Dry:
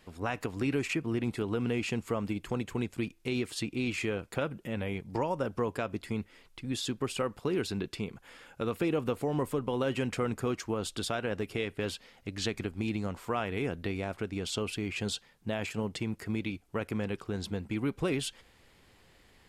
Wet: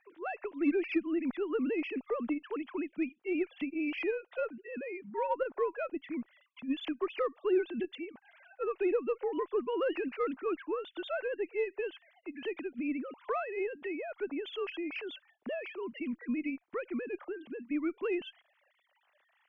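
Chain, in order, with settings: formants replaced by sine waves; Chebyshev shaper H 6 -35 dB, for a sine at -17 dBFS; trim -1.5 dB

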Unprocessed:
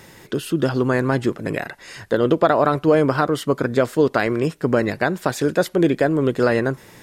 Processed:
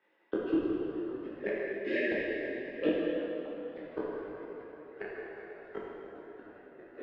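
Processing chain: backward echo that repeats 197 ms, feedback 75%, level -6 dB; reverb removal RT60 1.2 s; gate -31 dBFS, range -25 dB; high-pass 310 Hz 24 dB/octave; time-frequency box 1.11–3.13 s, 630–1600 Hz -27 dB; low-pass 2.9 kHz 24 dB/octave; inverted gate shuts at -16 dBFS, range -41 dB; plate-style reverb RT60 3.4 s, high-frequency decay 0.75×, DRR -6.5 dB; detune thickener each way 24 cents; trim +1.5 dB

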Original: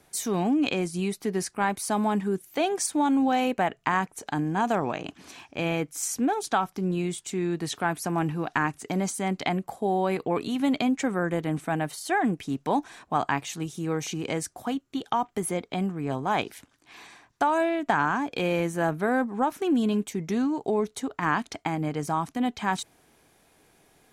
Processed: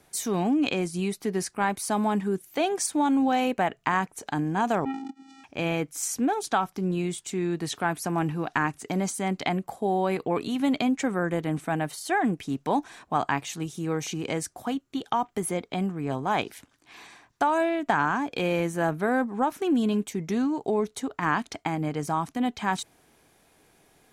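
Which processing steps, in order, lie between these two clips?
4.85–5.44 s: vocoder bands 4, square 269 Hz

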